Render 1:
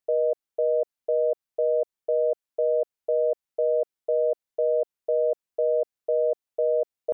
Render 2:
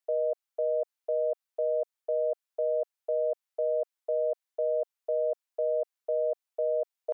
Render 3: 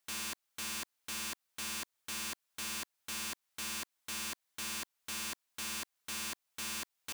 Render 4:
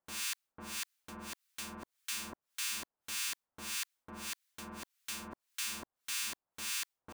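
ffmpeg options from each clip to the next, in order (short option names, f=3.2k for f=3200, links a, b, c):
-af "highpass=670"
-af "alimiter=level_in=3.5dB:limit=-24dB:level=0:latency=1:release=194,volume=-3.5dB,aeval=exprs='(mod(133*val(0)+1,2)-1)/133':c=same,volume=7.5dB"
-filter_complex "[0:a]acrossover=split=1200[a][b];[a]aeval=exprs='val(0)*(1-1/2+1/2*cos(2*PI*1.7*n/s))':c=same[c];[b]aeval=exprs='val(0)*(1-1/2-1/2*cos(2*PI*1.7*n/s))':c=same[d];[c][d]amix=inputs=2:normalize=0,volume=4dB"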